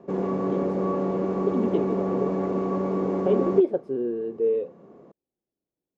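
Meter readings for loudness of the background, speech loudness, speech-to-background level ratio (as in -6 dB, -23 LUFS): -26.5 LUFS, -27.5 LUFS, -1.0 dB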